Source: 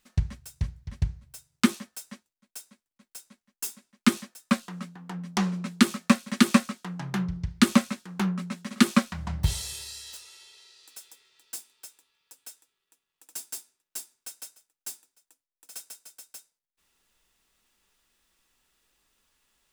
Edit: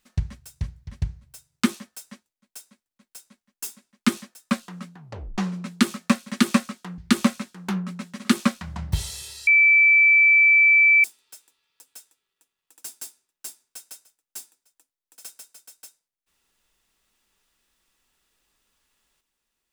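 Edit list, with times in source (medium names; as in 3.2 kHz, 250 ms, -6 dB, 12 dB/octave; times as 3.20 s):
4.97 s: tape stop 0.41 s
6.98–7.49 s: delete
9.98–11.55 s: bleep 2.32 kHz -12 dBFS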